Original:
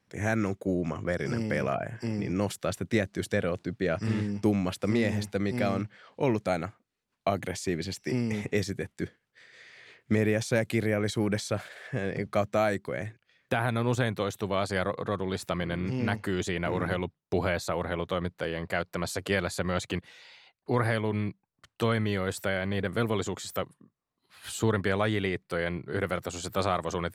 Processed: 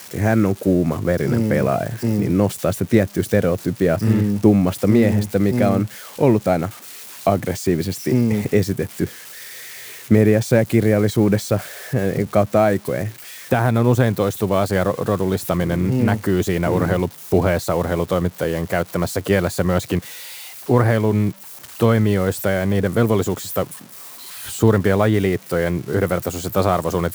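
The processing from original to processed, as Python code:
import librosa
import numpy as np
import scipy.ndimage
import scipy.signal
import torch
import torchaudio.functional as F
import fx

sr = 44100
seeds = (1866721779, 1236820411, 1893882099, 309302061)

y = x + 0.5 * 10.0 ** (-28.0 / 20.0) * np.diff(np.sign(x), prepend=np.sign(x[:1]))
y = fx.tilt_shelf(y, sr, db=6.0, hz=1400.0)
y = y * 10.0 ** (6.5 / 20.0)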